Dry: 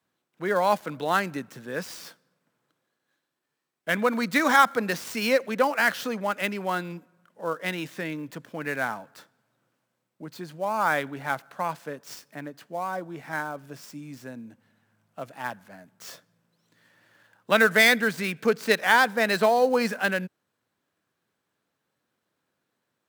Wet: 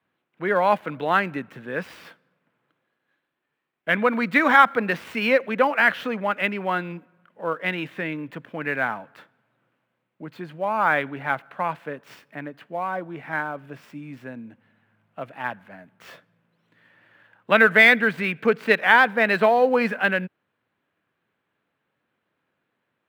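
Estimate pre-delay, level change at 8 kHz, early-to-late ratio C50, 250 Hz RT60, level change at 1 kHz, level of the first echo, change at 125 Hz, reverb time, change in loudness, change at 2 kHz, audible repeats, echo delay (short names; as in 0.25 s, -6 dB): none, under -10 dB, none, none, +3.5 dB, none, +2.5 dB, none, +3.5 dB, +4.5 dB, none, none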